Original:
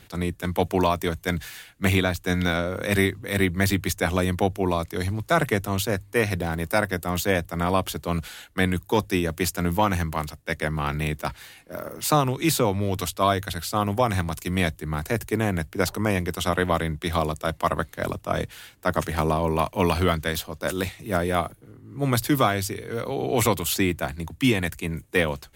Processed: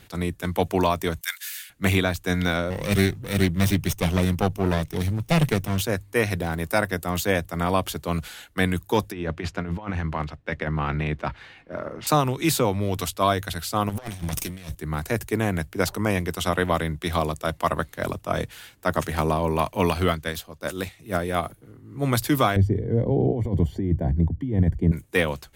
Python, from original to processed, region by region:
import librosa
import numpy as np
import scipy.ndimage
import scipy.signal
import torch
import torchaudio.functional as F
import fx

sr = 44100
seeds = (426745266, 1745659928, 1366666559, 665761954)

y = fx.chain(x, sr, fx.highpass(hz=1400.0, slope=24),
    fx.high_shelf(hz=6400.0, db=11.5), at=(1.21, 1.7))
y = fx.chain(y, sr, fx.lower_of_two(delay_ms=0.35),
    fx.peak_eq(hz=140.0, db=7.5, octaves=0.62), at=(2.7, 5.81))
y = fx.chain(y, sr, fx.block_float(bits=7),
    fx.lowpass(hz=2800.0, slope=12),
    fx.over_compress(threshold_db=-26.0, ratio=-0.5), at=(9.12, 12.07))
y = fx.chain(y, sr, fx.lower_of_two(delay_ms=0.35),
    fx.peak_eq(hz=9400.0, db=6.0, octaves=2.2),
    fx.over_compress(threshold_db=-30.0, ratio=-0.5), at=(13.89, 14.75))
y = fx.chain(y, sr, fx.notch(hz=940.0, q=25.0),
    fx.upward_expand(threshold_db=-34.0, expansion=1.5), at=(19.9, 21.43))
y = fx.chain(y, sr, fx.over_compress(threshold_db=-27.0, ratio=-1.0),
    fx.moving_average(points=34),
    fx.low_shelf(hz=300.0, db=12.0), at=(22.56, 24.92))